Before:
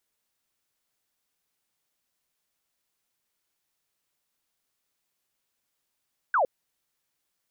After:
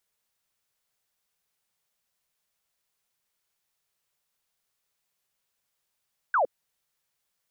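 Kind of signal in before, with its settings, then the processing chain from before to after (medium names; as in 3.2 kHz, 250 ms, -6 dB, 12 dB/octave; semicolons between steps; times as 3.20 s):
laser zap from 1.6 kHz, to 480 Hz, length 0.11 s sine, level -19.5 dB
peaking EQ 290 Hz -12.5 dB 0.33 oct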